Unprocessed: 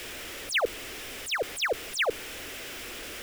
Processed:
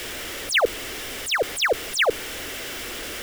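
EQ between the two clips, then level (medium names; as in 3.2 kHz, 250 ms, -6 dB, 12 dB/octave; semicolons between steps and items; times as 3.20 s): band-stop 2.5 kHz, Q 16; +7.0 dB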